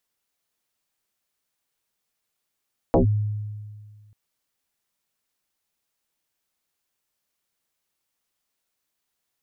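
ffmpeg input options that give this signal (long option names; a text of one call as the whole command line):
ffmpeg -f lavfi -i "aevalsrc='0.237*pow(10,-3*t/1.85)*sin(2*PI*105*t+5.5*clip(1-t/0.12,0,1)*sin(2*PI*1.35*105*t))':duration=1.19:sample_rate=44100" out.wav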